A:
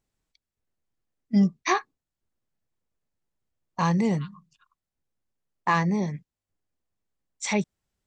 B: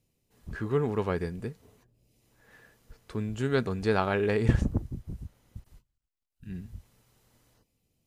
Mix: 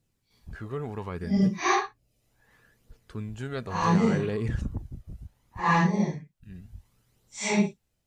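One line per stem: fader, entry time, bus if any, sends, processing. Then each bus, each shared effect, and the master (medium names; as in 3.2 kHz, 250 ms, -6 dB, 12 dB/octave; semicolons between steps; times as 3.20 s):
+0.5 dB, 0.00 s, no send, phase randomisation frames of 200 ms
0.0 dB, 0.00 s, no send, peak limiter -18.5 dBFS, peak gain reduction 9 dB; flange 0.69 Hz, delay 0.2 ms, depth 1.5 ms, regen +43%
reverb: none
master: none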